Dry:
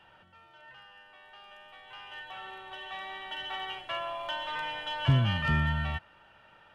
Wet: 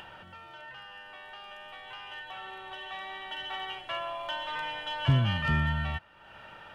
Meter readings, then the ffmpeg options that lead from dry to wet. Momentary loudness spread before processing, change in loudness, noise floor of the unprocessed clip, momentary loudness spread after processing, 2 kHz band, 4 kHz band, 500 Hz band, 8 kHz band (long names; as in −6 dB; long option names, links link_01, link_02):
24 LU, 0.0 dB, −59 dBFS, 20 LU, +0.5 dB, 0.0 dB, 0.0 dB, can't be measured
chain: -af "acompressor=mode=upward:threshold=-38dB:ratio=2.5"